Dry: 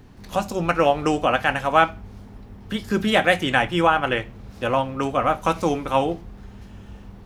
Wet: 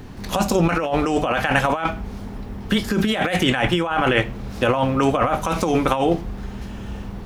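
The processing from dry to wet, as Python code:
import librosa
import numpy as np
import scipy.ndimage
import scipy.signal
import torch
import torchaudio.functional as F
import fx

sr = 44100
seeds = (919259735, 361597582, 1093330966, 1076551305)

y = fx.hum_notches(x, sr, base_hz=50, count=3)
y = fx.over_compress(y, sr, threshold_db=-25.0, ratio=-1.0)
y = y * 10.0 ** (6.0 / 20.0)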